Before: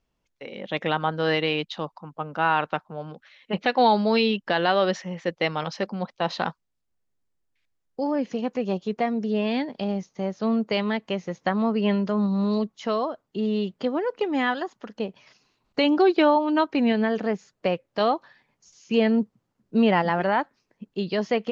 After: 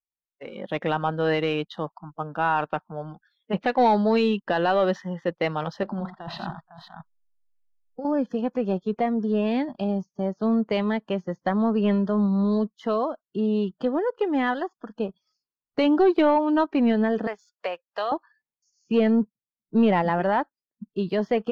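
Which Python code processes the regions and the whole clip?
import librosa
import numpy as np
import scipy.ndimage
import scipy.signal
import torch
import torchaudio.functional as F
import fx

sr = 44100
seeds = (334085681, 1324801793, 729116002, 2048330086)

y = fx.chain(x, sr, fx.lowpass(hz=4000.0, slope=12),
    fx.over_compress(threshold_db=-33.0, ratio=-1.0),
    fx.echo_multitap(ms=(49, 86, 475, 505), db=(-19.0, -8.5, -19.5, -9.0)), at=(5.83, 8.05))
y = fx.chain(y, sr, fx.highpass(hz=790.0, slope=12),
    fx.band_squash(depth_pct=70), at=(17.27, 18.12))
y = fx.leveller(y, sr, passes=1)
y = fx.lowpass(y, sr, hz=1600.0, slope=6)
y = fx.noise_reduce_blind(y, sr, reduce_db=28)
y = y * librosa.db_to_amplitude(-2.0)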